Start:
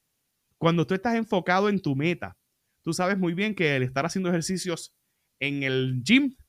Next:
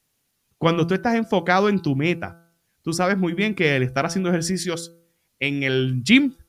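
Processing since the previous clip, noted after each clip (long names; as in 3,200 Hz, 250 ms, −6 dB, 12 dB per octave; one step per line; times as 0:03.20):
hum removal 168.1 Hz, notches 9
level +4.5 dB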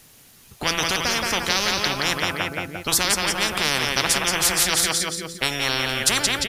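on a send: repeating echo 174 ms, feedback 39%, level −9 dB
on the sum: every bin compressed towards the loudest bin 10 to 1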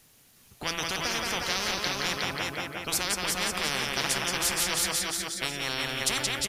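single-tap delay 363 ms −4 dB
level −8.5 dB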